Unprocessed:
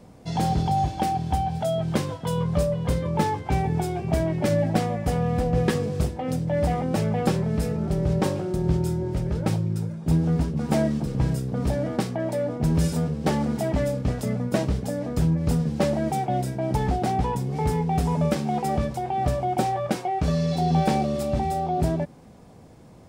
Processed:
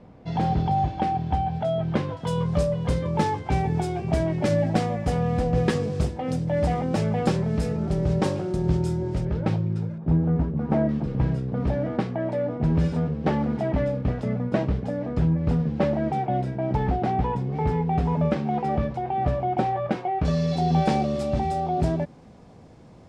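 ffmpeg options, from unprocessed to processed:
-af "asetnsamples=n=441:p=0,asendcmd='2.17 lowpass f 7600;9.25 lowpass f 3300;9.98 lowpass f 1500;10.89 lowpass f 2700;20.25 lowpass f 6300',lowpass=2900"

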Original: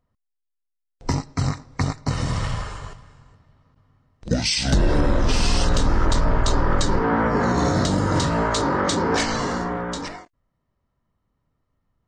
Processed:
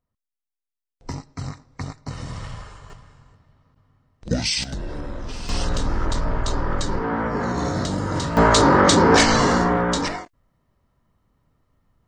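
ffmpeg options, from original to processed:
-af "asetnsamples=n=441:p=0,asendcmd='2.9 volume volume -1dB;4.64 volume volume -12.5dB;5.49 volume volume -4dB;8.37 volume volume 7dB',volume=0.376"

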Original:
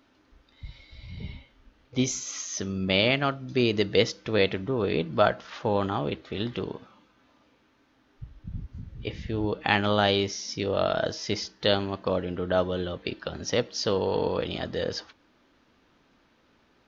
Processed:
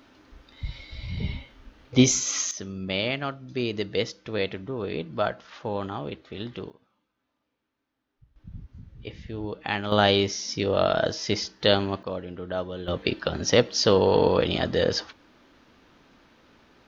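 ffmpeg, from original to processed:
-af "asetnsamples=n=441:p=0,asendcmd='2.51 volume volume -4.5dB;6.7 volume volume -16.5dB;8.36 volume volume -5dB;9.92 volume volume 3dB;12.03 volume volume -5.5dB;12.88 volume volume 6.5dB',volume=2.51"

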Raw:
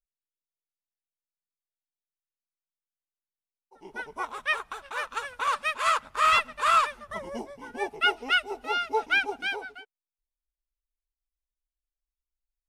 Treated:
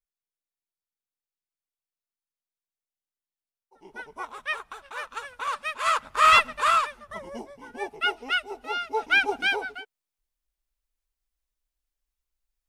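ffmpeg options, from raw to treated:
-af "volume=5.01,afade=t=in:st=5.7:d=0.75:silence=0.354813,afade=t=out:st=6.45:d=0.35:silence=0.398107,afade=t=in:st=8.93:d=0.42:silence=0.398107"

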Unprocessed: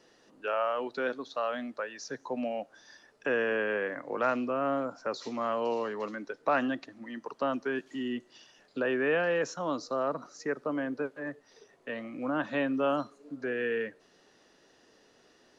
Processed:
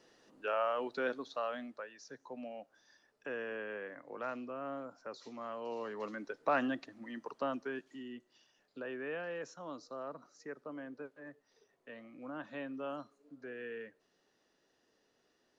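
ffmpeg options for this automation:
-af "volume=1.68,afade=t=out:st=1.17:d=0.79:silence=0.375837,afade=t=in:st=5.63:d=0.57:silence=0.398107,afade=t=out:st=7.21:d=0.85:silence=0.354813"

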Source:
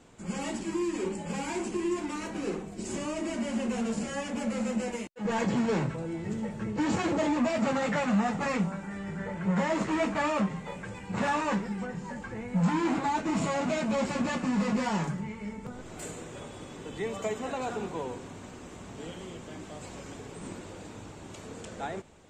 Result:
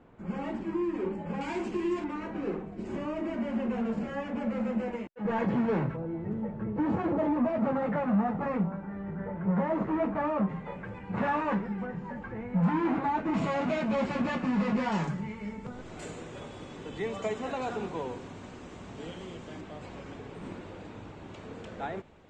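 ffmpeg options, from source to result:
-af "asetnsamples=n=441:p=0,asendcmd='1.41 lowpass f 3500;2.04 lowpass f 1900;5.97 lowpass f 1200;10.49 lowpass f 2000;13.34 lowpass f 3300;14.92 lowpass f 5200;19.61 lowpass f 3300',lowpass=1700"

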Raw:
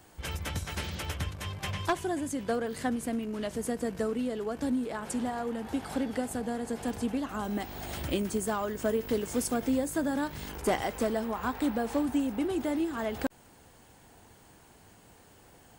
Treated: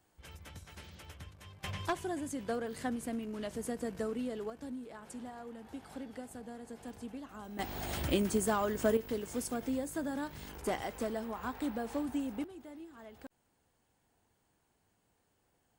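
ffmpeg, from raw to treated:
-af "asetnsamples=n=441:p=0,asendcmd='1.64 volume volume -5.5dB;4.5 volume volume -13dB;7.59 volume volume 0dB;8.97 volume volume -7dB;12.44 volume volume -19dB',volume=0.168"

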